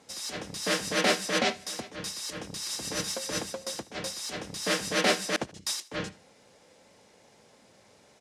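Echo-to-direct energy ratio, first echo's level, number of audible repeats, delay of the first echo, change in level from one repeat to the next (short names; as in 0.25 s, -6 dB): -20.0 dB, -21.0 dB, 2, 76 ms, -7.0 dB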